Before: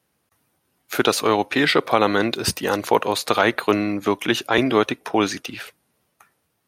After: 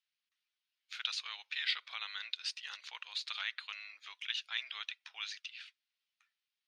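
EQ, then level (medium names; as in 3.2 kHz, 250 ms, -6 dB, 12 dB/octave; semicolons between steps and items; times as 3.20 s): ladder high-pass 2.8 kHz, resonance 20%; tape spacing loss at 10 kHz 41 dB; +10.0 dB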